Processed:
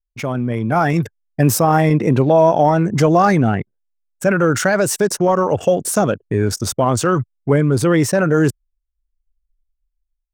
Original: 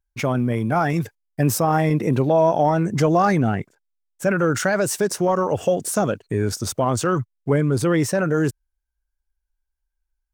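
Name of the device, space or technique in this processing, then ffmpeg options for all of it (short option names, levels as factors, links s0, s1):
voice memo with heavy noise removal: -af "anlmdn=2.51,dynaudnorm=f=280:g=5:m=4.47,volume=0.891"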